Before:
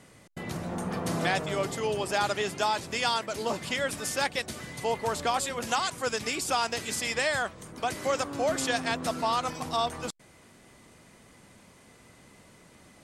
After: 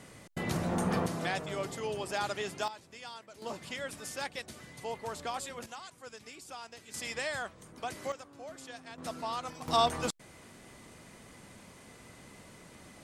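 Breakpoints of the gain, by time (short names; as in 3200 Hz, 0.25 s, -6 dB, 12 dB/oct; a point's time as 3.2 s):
+2.5 dB
from 1.06 s -6.5 dB
from 2.68 s -18.5 dB
from 3.42 s -9.5 dB
from 5.66 s -18 dB
from 6.94 s -8 dB
from 8.12 s -18.5 dB
from 8.98 s -9 dB
from 9.68 s +2 dB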